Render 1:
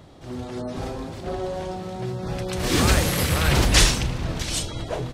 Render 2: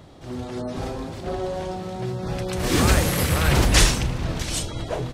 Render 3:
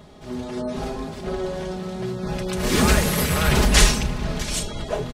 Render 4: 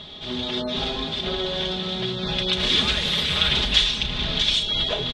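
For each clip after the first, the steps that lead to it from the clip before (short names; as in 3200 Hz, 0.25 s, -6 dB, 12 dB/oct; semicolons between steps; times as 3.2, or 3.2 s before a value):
dynamic EQ 4000 Hz, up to -3 dB, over -38 dBFS, Q 0.82; gain +1 dB
comb 4.8 ms, depth 58%
high shelf 2400 Hz +10 dB; compressor 5:1, threshold -24 dBFS, peak gain reduction 16.5 dB; synth low-pass 3500 Hz, resonance Q 7.7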